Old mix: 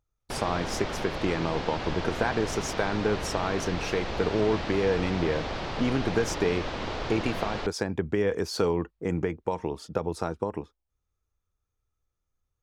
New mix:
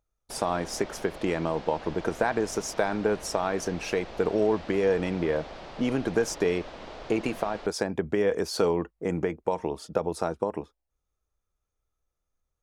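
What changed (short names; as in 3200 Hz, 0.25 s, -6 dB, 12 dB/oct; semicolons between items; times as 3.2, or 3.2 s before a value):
background -10.5 dB; master: add fifteen-band EQ 100 Hz -8 dB, 630 Hz +5 dB, 10000 Hz +5 dB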